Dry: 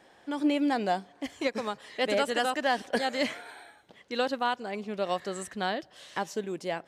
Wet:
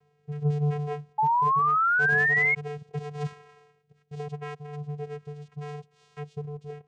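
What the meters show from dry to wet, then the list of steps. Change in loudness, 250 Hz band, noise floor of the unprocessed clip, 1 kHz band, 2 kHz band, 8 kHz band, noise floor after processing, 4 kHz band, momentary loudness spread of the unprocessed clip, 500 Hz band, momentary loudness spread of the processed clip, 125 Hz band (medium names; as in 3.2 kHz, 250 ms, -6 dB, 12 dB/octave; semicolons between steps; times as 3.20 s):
+5.5 dB, no reading, -59 dBFS, +5.0 dB, +9.0 dB, under -10 dB, -67 dBFS, under -15 dB, 10 LU, -5.5 dB, 20 LU, +17.5 dB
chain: vocoder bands 4, square 147 Hz; rotary cabinet horn 0.8 Hz; painted sound rise, 1.18–2.55 s, 850–2200 Hz -21 dBFS; trim -1.5 dB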